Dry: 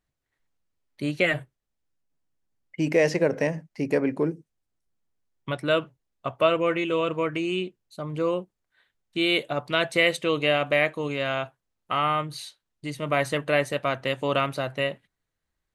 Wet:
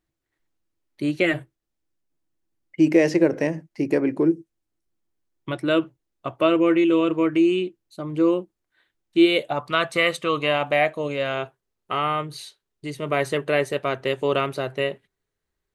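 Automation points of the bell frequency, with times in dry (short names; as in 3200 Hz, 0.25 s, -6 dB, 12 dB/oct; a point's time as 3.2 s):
bell +12.5 dB 0.27 oct
9.22 s 330 Hz
9.65 s 1200 Hz
10.33 s 1200 Hz
11.4 s 400 Hz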